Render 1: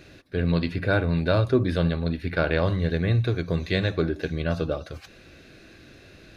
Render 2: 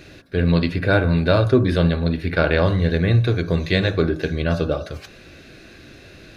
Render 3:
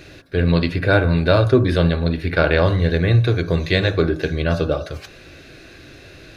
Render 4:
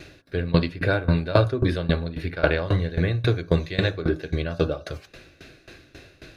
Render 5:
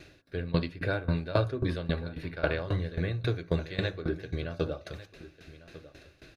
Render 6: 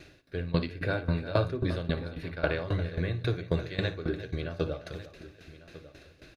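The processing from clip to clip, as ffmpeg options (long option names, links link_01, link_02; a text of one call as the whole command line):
ffmpeg -i in.wav -af "bandreject=frequency=53.26:width_type=h:width=4,bandreject=frequency=106.52:width_type=h:width=4,bandreject=frequency=159.78:width_type=h:width=4,bandreject=frequency=213.04:width_type=h:width=4,bandreject=frequency=266.3:width_type=h:width=4,bandreject=frequency=319.56:width_type=h:width=4,bandreject=frequency=372.82:width_type=h:width=4,bandreject=frequency=426.08:width_type=h:width=4,bandreject=frequency=479.34:width_type=h:width=4,bandreject=frequency=532.6:width_type=h:width=4,bandreject=frequency=585.86:width_type=h:width=4,bandreject=frequency=639.12:width_type=h:width=4,bandreject=frequency=692.38:width_type=h:width=4,bandreject=frequency=745.64:width_type=h:width=4,bandreject=frequency=798.9:width_type=h:width=4,bandreject=frequency=852.16:width_type=h:width=4,bandreject=frequency=905.42:width_type=h:width=4,bandreject=frequency=958.68:width_type=h:width=4,bandreject=frequency=1011.94:width_type=h:width=4,bandreject=frequency=1065.2:width_type=h:width=4,bandreject=frequency=1118.46:width_type=h:width=4,bandreject=frequency=1171.72:width_type=h:width=4,bandreject=frequency=1224.98:width_type=h:width=4,bandreject=frequency=1278.24:width_type=h:width=4,bandreject=frequency=1331.5:width_type=h:width=4,bandreject=frequency=1384.76:width_type=h:width=4,bandreject=frequency=1438.02:width_type=h:width=4,bandreject=frequency=1491.28:width_type=h:width=4,bandreject=frequency=1544.54:width_type=h:width=4,bandreject=frequency=1597.8:width_type=h:width=4,bandreject=frequency=1651.06:width_type=h:width=4,bandreject=frequency=1704.32:width_type=h:width=4,volume=6dB" out.wav
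ffmpeg -i in.wav -af "equalizer=frequency=210:width_type=o:width=0.31:gain=-9,volume=2dB" out.wav
ffmpeg -i in.wav -af "aeval=exprs='val(0)*pow(10,-19*if(lt(mod(3.7*n/s,1),2*abs(3.7)/1000),1-mod(3.7*n/s,1)/(2*abs(3.7)/1000),(mod(3.7*n/s,1)-2*abs(3.7)/1000)/(1-2*abs(3.7)/1000))/20)':channel_layout=same,volume=1dB" out.wav
ffmpeg -i in.wav -af "aecho=1:1:1148:0.141,volume=-8dB" out.wav
ffmpeg -i in.wav -af "aecho=1:1:57|350:0.178|0.188" out.wav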